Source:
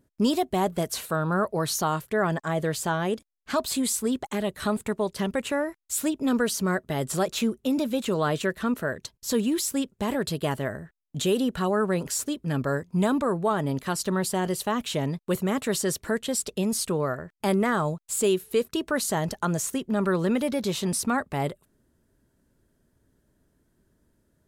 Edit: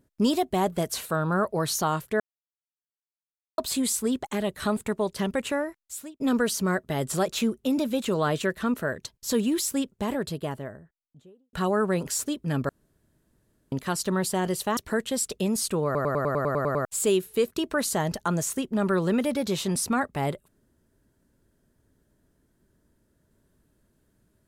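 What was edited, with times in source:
2.2–3.58 mute
5.5–6.2 fade out linear
9.69–11.53 studio fade out
12.69–13.72 room tone
14.77–15.94 cut
17.02 stutter in place 0.10 s, 10 plays

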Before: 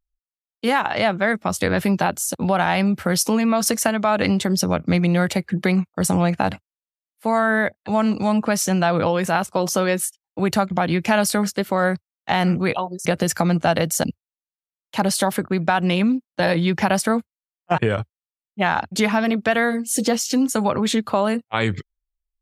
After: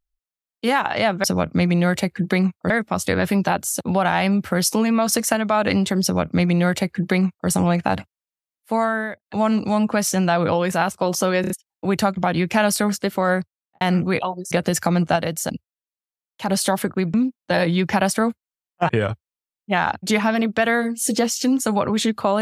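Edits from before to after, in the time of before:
4.57–6.03 copy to 1.24
7.3–7.8 fade out
9.95 stutter in place 0.03 s, 4 plays
11.86–12.35 studio fade out
13.7–15.03 gain -4 dB
15.68–16.03 cut

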